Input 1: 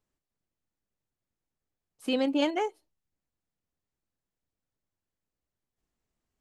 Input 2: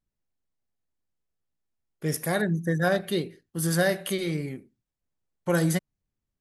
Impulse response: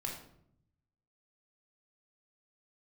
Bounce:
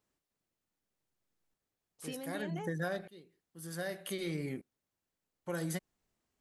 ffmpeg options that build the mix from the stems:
-filter_complex "[0:a]alimiter=level_in=2.5dB:limit=-24dB:level=0:latency=1,volume=-2.5dB,acompressor=threshold=-42dB:ratio=10,highpass=41,volume=2.5dB[link_01];[1:a]aeval=exprs='val(0)*pow(10,-29*if(lt(mod(-0.65*n/s,1),2*abs(-0.65)/1000),1-mod(-0.65*n/s,1)/(2*abs(-0.65)/1000),(mod(-0.65*n/s,1)-2*abs(-0.65)/1000)/(1-2*abs(-0.65)/1000))/20)':channel_layout=same,volume=0.5dB[link_02];[link_01][link_02]amix=inputs=2:normalize=0,equalizer=frequency=77:width=0.65:gain=-5.5,acompressor=threshold=-32dB:ratio=12"

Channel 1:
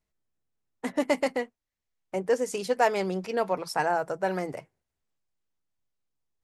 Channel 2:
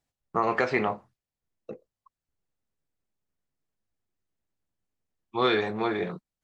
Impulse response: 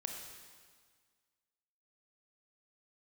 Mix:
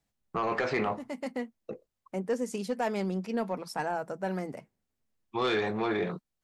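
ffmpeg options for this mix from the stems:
-filter_complex "[0:a]equalizer=frequency=220:width=2.8:gain=13.5,volume=-6dB[link_01];[1:a]volume=0.5dB,asplit=2[link_02][link_03];[link_03]apad=whole_len=283931[link_04];[link_01][link_04]sidechaincompress=threshold=-36dB:ratio=8:attack=9:release=474[link_05];[link_05][link_02]amix=inputs=2:normalize=0,asoftclip=type=tanh:threshold=-17.5dB,alimiter=limit=-21.5dB:level=0:latency=1:release=12"

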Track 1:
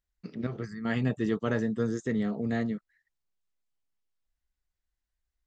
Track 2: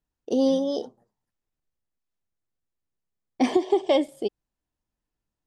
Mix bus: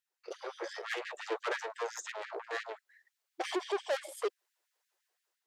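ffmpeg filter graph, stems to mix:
ffmpeg -i stem1.wav -i stem2.wav -filter_complex "[0:a]dynaudnorm=framelen=160:gausssize=3:maxgain=3.5dB,volume=-3dB,asplit=2[link_01][link_02];[1:a]alimiter=limit=-20dB:level=0:latency=1:release=214,volume=0dB[link_03];[link_02]apad=whole_len=240805[link_04];[link_03][link_04]sidechaincompress=threshold=-43dB:ratio=8:attack=30:release=744[link_05];[link_01][link_05]amix=inputs=2:normalize=0,dynaudnorm=framelen=210:gausssize=5:maxgain=7dB,asoftclip=type=tanh:threshold=-27.5dB,afftfilt=real='re*gte(b*sr/1024,310*pow(1600/310,0.5+0.5*sin(2*PI*5.8*pts/sr)))':imag='im*gte(b*sr/1024,310*pow(1600/310,0.5+0.5*sin(2*PI*5.8*pts/sr)))':win_size=1024:overlap=0.75" out.wav

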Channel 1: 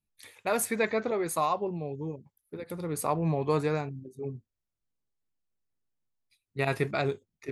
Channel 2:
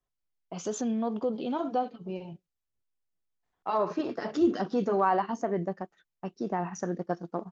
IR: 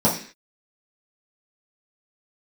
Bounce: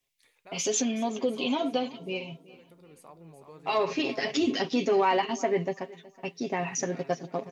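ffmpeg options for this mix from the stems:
-filter_complex "[0:a]lowpass=10000,acompressor=threshold=-46dB:ratio=1.5,volume=-14dB,asplit=2[link_01][link_02];[link_02]volume=-6.5dB[link_03];[1:a]highshelf=frequency=1800:width_type=q:width=3:gain=8,aecho=1:1:7.4:0.65,volume=2dB,asplit=2[link_04][link_05];[link_05]volume=-21dB[link_06];[link_03][link_06]amix=inputs=2:normalize=0,aecho=0:1:372|744|1116|1488|1860:1|0.33|0.109|0.0359|0.0119[link_07];[link_01][link_04][link_07]amix=inputs=3:normalize=0,lowshelf=frequency=86:gain=-10.5"

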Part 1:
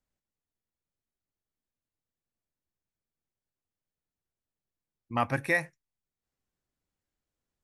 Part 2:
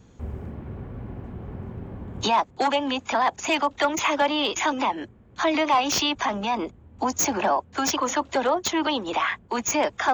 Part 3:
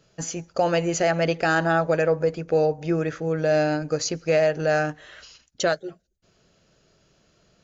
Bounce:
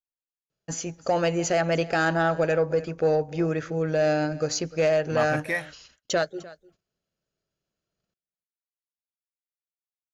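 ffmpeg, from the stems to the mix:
ffmpeg -i stem1.wav -i stem2.wav -i stem3.wav -filter_complex "[0:a]volume=-1dB[link_01];[2:a]adelay=500,volume=-1dB,asplit=2[link_02][link_03];[link_03]volume=-21dB,aecho=0:1:301:1[link_04];[link_01][link_02][link_04]amix=inputs=3:normalize=0,agate=range=-23dB:threshold=-58dB:ratio=16:detection=peak,asoftclip=type=tanh:threshold=-12.5dB" out.wav

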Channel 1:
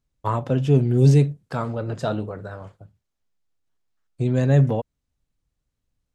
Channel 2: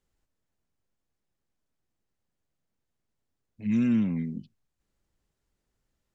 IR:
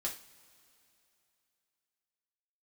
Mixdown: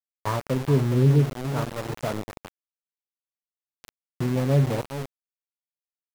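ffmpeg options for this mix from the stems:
-filter_complex "[0:a]afwtdn=0.0398,volume=-4.5dB,asplit=3[link_01][link_02][link_03];[link_02]volume=-12dB[link_04];[link_03]volume=-10.5dB[link_05];[1:a]bass=frequency=250:gain=-3,treble=frequency=4000:gain=2,volume=20.5dB,asoftclip=hard,volume=-20.5dB,volume=-9.5dB,asplit=2[link_06][link_07];[link_07]volume=-9.5dB[link_08];[2:a]atrim=start_sample=2205[link_09];[link_04][link_08]amix=inputs=2:normalize=0[link_10];[link_10][link_09]afir=irnorm=-1:irlink=0[link_11];[link_05]aecho=0:1:411|822|1233|1644:1|0.22|0.0484|0.0106[link_12];[link_01][link_06][link_11][link_12]amix=inputs=4:normalize=0,aeval=exprs='val(0)*gte(abs(val(0)),0.0422)':channel_layout=same"

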